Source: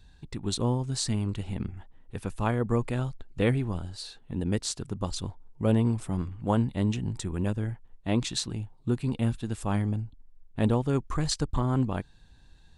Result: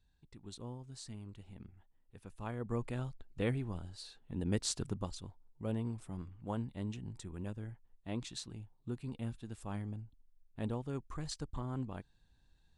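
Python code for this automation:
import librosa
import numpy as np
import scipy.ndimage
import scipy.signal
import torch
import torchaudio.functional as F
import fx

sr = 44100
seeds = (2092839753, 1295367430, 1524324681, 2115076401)

y = fx.gain(x, sr, db=fx.line((2.19, -19.0), (2.83, -9.5), (4.19, -9.5), (4.86, -2.0), (5.18, -13.5)))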